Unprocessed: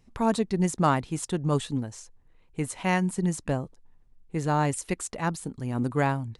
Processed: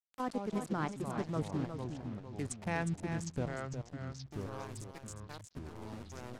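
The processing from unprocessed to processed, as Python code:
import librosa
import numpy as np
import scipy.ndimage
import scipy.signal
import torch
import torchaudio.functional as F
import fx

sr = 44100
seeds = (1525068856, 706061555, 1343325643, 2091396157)

y = fx.wiener(x, sr, points=15)
y = fx.doppler_pass(y, sr, speed_mps=39, closest_m=20.0, pass_at_s=2.06)
y = fx.high_shelf(y, sr, hz=8700.0, db=12.0)
y = fx.level_steps(y, sr, step_db=12)
y = fx.harmonic_tremolo(y, sr, hz=2.7, depth_pct=50, crossover_hz=450.0)
y = np.where(np.abs(y) >= 10.0 ** (-50.0 / 20.0), y, 0.0)
y = fx.env_lowpass_down(y, sr, base_hz=2400.0, full_db=-31.0)
y = y + 10.0 ** (-8.0 / 20.0) * np.pad(y, (int(360 * sr / 1000.0), 0))[:len(y)]
y = fx.echo_pitch(y, sr, ms=106, semitones=-4, count=3, db_per_echo=-6.0)
y = y * librosa.db_to_amplitude(4.0)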